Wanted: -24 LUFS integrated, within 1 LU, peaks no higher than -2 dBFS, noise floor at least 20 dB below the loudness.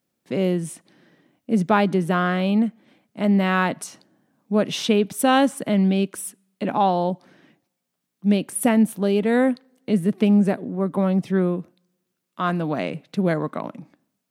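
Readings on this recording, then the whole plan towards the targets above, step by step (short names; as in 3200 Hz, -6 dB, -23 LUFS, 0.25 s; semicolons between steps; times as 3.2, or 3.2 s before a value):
loudness -22.0 LUFS; peak -4.5 dBFS; loudness target -24.0 LUFS
-> gain -2 dB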